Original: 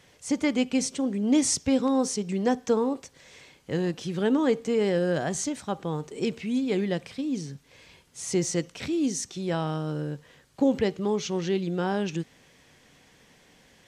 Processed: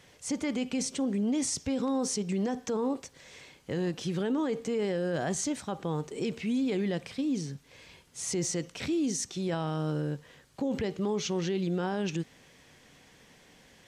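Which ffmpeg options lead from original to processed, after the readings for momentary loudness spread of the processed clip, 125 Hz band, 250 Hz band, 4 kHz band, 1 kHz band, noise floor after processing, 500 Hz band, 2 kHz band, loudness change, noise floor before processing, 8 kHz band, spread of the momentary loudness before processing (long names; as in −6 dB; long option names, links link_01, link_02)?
8 LU, −2.0 dB, −4.0 dB, −3.0 dB, −4.5 dB, −59 dBFS, −5.0 dB, −4.5 dB, −4.5 dB, −59 dBFS, −3.0 dB, 9 LU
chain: -af "alimiter=limit=-23dB:level=0:latency=1:release=29"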